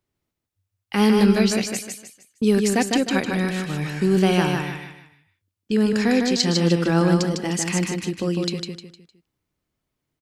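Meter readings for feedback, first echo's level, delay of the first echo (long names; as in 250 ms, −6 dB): 35%, −4.0 dB, 153 ms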